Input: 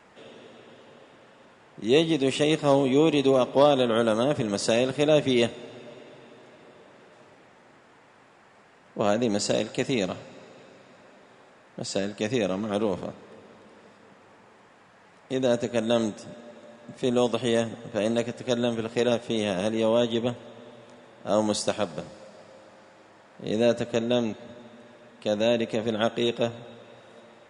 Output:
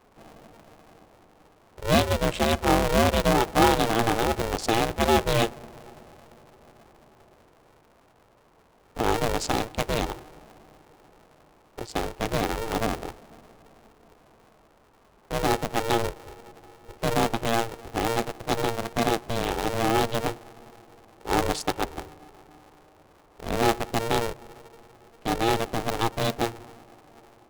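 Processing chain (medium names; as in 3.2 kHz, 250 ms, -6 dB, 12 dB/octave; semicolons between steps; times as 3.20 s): local Wiener filter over 25 samples; polarity switched at an audio rate 230 Hz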